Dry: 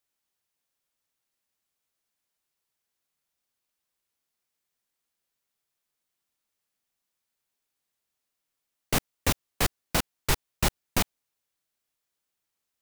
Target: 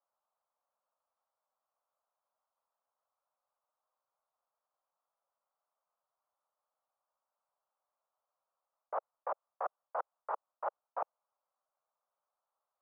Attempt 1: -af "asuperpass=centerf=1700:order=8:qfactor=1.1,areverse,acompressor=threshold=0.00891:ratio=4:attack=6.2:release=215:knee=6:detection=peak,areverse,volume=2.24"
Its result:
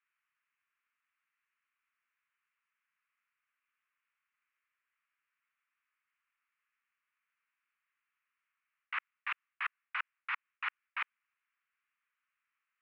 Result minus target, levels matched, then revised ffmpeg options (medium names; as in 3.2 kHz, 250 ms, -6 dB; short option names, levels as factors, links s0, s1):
2 kHz band +15.0 dB
-af "asuperpass=centerf=830:order=8:qfactor=1.1,areverse,acompressor=threshold=0.00891:ratio=4:attack=6.2:release=215:knee=6:detection=peak,areverse,volume=2.24"